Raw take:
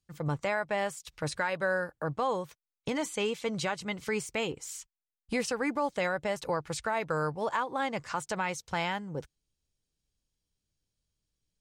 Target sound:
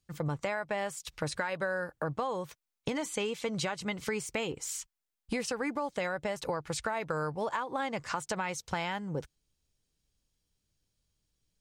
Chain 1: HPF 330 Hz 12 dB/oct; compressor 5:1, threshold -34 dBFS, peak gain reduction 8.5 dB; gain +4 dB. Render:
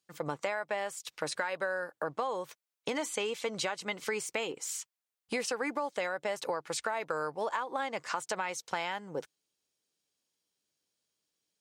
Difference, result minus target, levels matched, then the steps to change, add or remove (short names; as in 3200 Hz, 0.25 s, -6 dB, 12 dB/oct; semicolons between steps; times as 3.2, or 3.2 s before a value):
250 Hz band -5.0 dB
remove: HPF 330 Hz 12 dB/oct